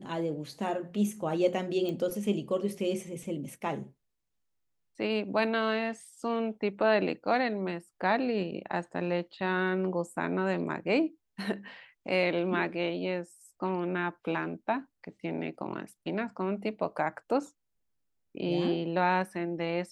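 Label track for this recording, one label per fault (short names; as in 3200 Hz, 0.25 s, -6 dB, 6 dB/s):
1.890000	1.890000	pop -23 dBFS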